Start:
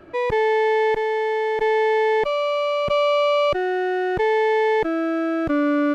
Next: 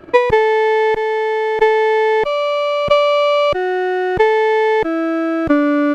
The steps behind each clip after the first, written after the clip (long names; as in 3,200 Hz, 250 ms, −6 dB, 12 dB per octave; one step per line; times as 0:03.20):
transient designer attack +12 dB, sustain −2 dB
level +4.5 dB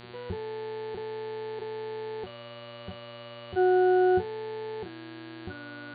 output level in coarse steps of 20 dB
resonances in every octave F#, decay 0.15 s
hum with harmonics 120 Hz, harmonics 38, −48 dBFS −3 dB per octave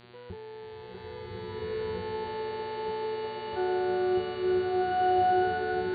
slow-attack reverb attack 1,620 ms, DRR −9.5 dB
level −7 dB